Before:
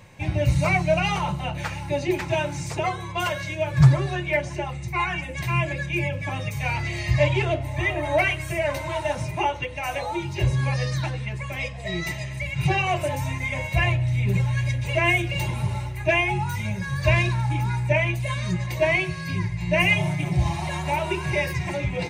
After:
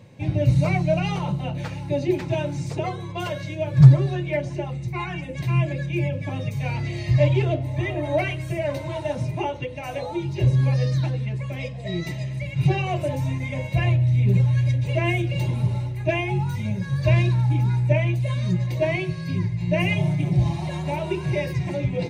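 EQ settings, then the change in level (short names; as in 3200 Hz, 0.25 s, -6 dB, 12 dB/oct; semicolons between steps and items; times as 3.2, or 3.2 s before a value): graphic EQ 125/250/500/4000 Hz +11/+11/+9/+6 dB; -9.0 dB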